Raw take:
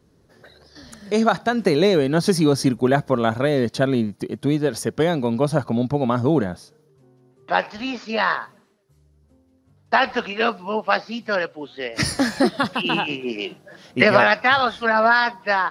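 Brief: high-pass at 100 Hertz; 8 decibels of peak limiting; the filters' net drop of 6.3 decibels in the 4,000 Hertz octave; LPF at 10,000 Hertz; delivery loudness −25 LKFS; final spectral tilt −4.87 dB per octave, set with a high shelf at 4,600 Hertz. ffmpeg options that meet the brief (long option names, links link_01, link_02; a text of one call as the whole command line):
ffmpeg -i in.wav -af "highpass=100,lowpass=10000,equalizer=frequency=4000:width_type=o:gain=-6,highshelf=frequency=4600:gain=-5.5,volume=-2dB,alimiter=limit=-12dB:level=0:latency=1" out.wav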